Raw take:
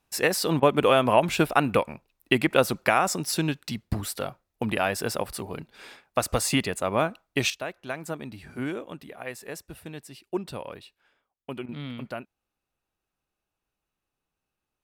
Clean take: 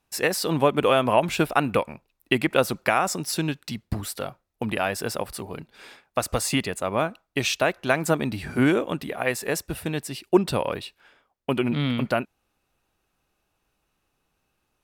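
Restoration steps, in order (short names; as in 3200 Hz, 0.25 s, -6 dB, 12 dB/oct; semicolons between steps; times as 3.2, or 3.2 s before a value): interpolate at 0.6/11.66, 24 ms; gain 0 dB, from 7.5 s +11.5 dB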